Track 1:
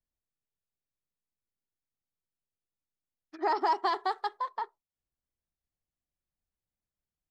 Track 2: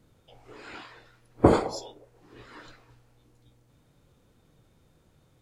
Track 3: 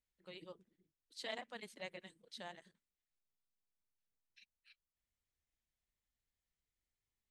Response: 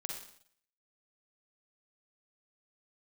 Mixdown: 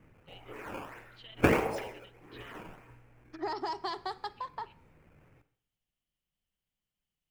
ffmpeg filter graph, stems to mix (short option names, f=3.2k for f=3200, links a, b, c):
-filter_complex "[0:a]equalizer=f=180:t=o:w=0.77:g=5.5,acrossover=split=300|3000[a][b][c];[b]acompressor=threshold=-38dB:ratio=2.5[d];[a][d][c]amix=inputs=3:normalize=0,volume=-1.5dB,asplit=2[e][f];[f]volume=-15dB[g];[1:a]acrusher=samples=13:mix=1:aa=0.000001:lfo=1:lforange=20.8:lforate=1.6,highshelf=f=3k:t=q:w=3:g=-7.5,volume=-1.5dB,asplit=2[h][i];[i]volume=-6dB[j];[2:a]lowpass=f=3k:t=q:w=7.8,acompressor=threshold=-45dB:ratio=2.5,volume=-8dB[k];[3:a]atrim=start_sample=2205[l];[g][j]amix=inputs=2:normalize=0[m];[m][l]afir=irnorm=-1:irlink=0[n];[e][h][k][n]amix=inputs=4:normalize=0,alimiter=limit=-8dB:level=0:latency=1:release=414"